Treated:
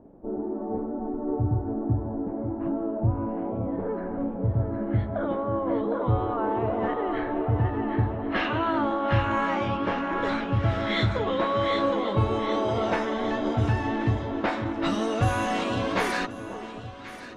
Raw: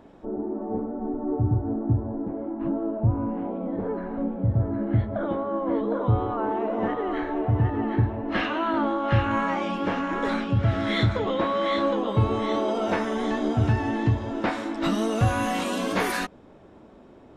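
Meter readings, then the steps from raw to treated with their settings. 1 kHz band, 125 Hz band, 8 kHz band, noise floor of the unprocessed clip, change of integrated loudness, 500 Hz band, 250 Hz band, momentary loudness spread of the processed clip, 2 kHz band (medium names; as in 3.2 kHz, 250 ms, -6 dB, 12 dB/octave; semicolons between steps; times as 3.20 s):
0.0 dB, -2.0 dB, no reading, -50 dBFS, -1.0 dB, 0.0 dB, -1.5 dB, 6 LU, 0.0 dB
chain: dynamic bell 180 Hz, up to -4 dB, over -31 dBFS, Q 0.86; level-controlled noise filter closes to 570 Hz, open at -20 dBFS; echo whose repeats swap between lows and highs 541 ms, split 1.1 kHz, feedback 68%, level -10.5 dB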